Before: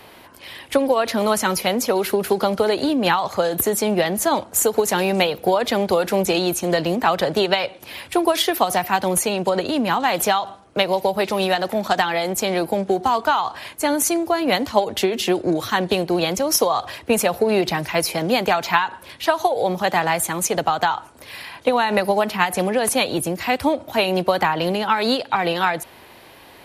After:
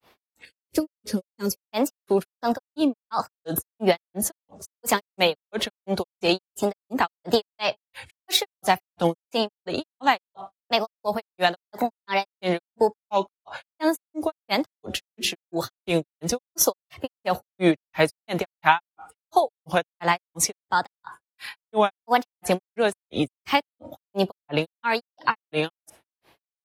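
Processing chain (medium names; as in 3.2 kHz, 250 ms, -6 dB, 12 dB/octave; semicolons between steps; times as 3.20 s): spectral noise reduction 13 dB; granulator 184 ms, grains 2.9 per s, pitch spread up and down by 3 st; time-frequency box 0.45–1.56 s, 560–4300 Hz -14 dB; trim +1.5 dB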